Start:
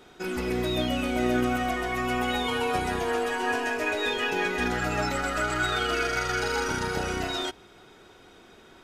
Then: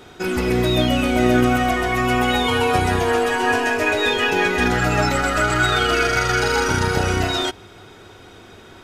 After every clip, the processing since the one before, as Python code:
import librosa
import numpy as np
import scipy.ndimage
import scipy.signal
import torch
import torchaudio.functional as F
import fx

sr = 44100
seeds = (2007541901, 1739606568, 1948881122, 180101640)

y = fx.peak_eq(x, sr, hz=99.0, db=11.5, octaves=0.47)
y = y * librosa.db_to_amplitude(8.5)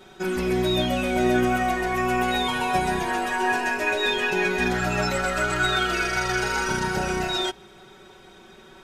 y = x + 0.83 * np.pad(x, (int(5.3 * sr / 1000.0), 0))[:len(x)]
y = y * librosa.db_to_amplitude(-7.5)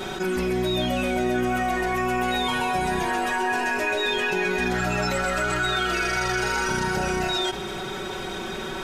y = fx.env_flatten(x, sr, amount_pct=70)
y = y * librosa.db_to_amplitude(-4.0)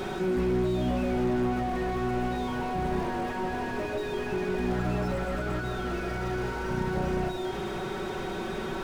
y = fx.slew_limit(x, sr, full_power_hz=23.0)